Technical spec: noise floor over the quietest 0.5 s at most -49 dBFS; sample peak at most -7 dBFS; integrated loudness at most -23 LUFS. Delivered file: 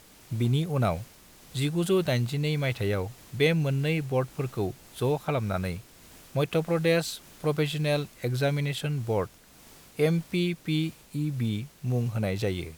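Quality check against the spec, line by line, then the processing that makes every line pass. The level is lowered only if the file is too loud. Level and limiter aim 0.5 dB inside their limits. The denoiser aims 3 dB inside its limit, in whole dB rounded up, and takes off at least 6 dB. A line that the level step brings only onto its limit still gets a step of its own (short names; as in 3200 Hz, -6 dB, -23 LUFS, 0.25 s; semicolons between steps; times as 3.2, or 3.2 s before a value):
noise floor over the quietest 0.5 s -53 dBFS: OK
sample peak -11.5 dBFS: OK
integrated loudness -28.5 LUFS: OK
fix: none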